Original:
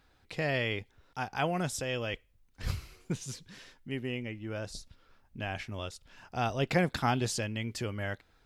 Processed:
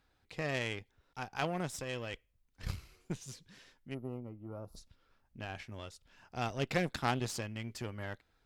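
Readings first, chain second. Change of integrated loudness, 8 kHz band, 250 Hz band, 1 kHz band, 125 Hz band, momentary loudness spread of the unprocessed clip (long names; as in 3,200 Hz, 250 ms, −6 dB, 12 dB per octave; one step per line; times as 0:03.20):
−5.0 dB, −6.0 dB, −5.5 dB, −5.0 dB, −5.5 dB, 14 LU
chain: harmonic generator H 2 −9 dB, 7 −26 dB, 8 −22 dB, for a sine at −13.5 dBFS
gain on a spectral selection 0:03.94–0:04.77, 1,400–10,000 Hz −22 dB
level −3.5 dB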